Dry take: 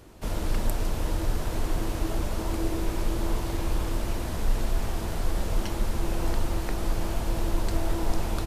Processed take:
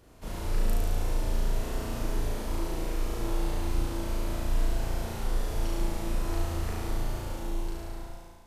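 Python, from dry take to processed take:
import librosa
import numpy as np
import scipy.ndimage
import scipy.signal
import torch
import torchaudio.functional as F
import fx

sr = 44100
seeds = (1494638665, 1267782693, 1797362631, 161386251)

y = fx.fade_out_tail(x, sr, length_s=1.69)
y = fx.room_flutter(y, sr, wall_m=6.1, rt60_s=1.5)
y = y * 10.0 ** (-8.5 / 20.0)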